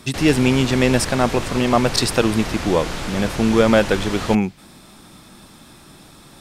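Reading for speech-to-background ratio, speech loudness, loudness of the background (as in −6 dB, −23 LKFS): 9.0 dB, −19.0 LKFS, −28.0 LKFS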